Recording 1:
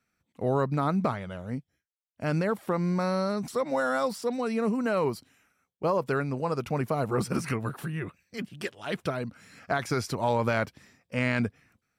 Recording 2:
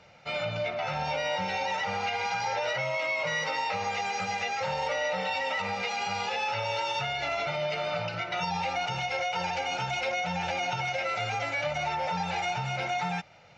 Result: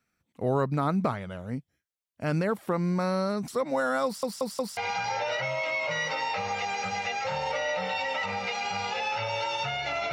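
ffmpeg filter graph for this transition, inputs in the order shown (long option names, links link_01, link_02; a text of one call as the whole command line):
ffmpeg -i cue0.wav -i cue1.wav -filter_complex "[0:a]apad=whole_dur=10.12,atrim=end=10.12,asplit=4[link_01][link_02][link_03][link_04];[link_01]atrim=end=4.232[link_05];[link_02]atrim=start=4.048:end=4.232[link_06];[link_03]atrim=start=4.048:end=4.232[link_07];[link_04]atrim=start=4.048:end=4.232[link_08];[1:a]atrim=start=2.128:end=7.48[link_09];[link_05][link_06]acrossfade=duration=0.004:curve1=hsin:curve2=hsin[link_10];[link_10][link_07]acrossfade=duration=0.004:curve1=hsin:curve2=hsin[link_11];[link_11][link_08]acrossfade=duration=0.004:curve1=hsin:curve2=hsin[link_12];[link_12][link_09]acrossfade=duration=0.004:curve1=hsin:curve2=hsin" out.wav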